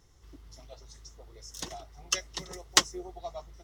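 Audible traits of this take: noise floor -60 dBFS; spectral tilt -2.5 dB/oct

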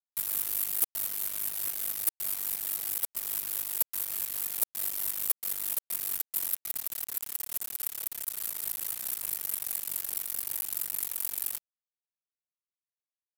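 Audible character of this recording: tremolo saw up 4.7 Hz, depth 55%; a quantiser's noise floor 6-bit, dither none

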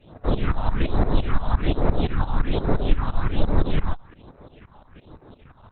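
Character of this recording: a quantiser's noise floor 12-bit, dither none; tremolo saw up 5.8 Hz, depth 85%; phasing stages 4, 1.2 Hz, lowest notch 370–3100 Hz; Opus

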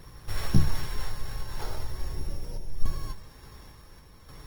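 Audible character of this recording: a buzz of ramps at a fixed pitch in blocks of 8 samples; random-step tremolo; Opus

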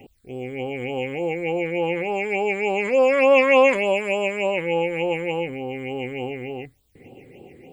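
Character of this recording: a quantiser's noise floor 12-bit, dither triangular; phasing stages 8, 3.4 Hz, lowest notch 780–2000 Hz

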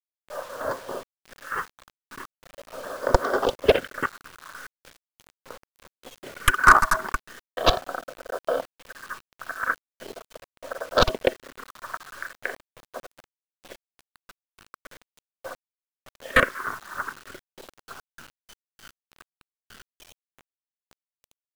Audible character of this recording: chopped level 3.3 Hz, depth 65%, duty 40%; phasing stages 4, 0.4 Hz, lowest notch 500–2700 Hz; a quantiser's noise floor 8-bit, dither none

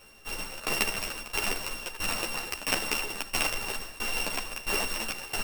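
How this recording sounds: a buzz of ramps at a fixed pitch in blocks of 16 samples; tremolo saw down 1.5 Hz, depth 90%; a shimmering, thickened sound

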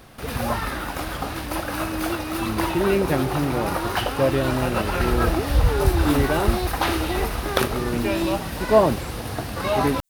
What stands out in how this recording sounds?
noise floor -31 dBFS; spectral tilt -5.0 dB/oct

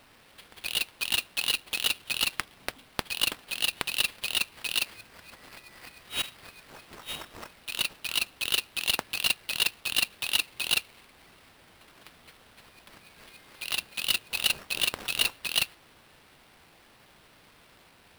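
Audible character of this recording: aliases and images of a low sample rate 6800 Hz, jitter 20%

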